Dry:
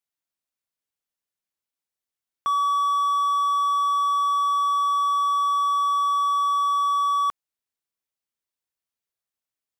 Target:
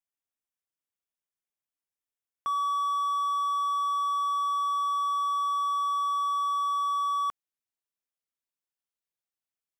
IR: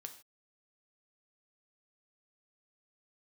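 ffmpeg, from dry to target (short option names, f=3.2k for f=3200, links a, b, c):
-af "asetnsamples=n=441:p=0,asendcmd='2.56 equalizer g -2.5',equalizer=f=4.3k:w=5.2:g=-12,volume=-6dB"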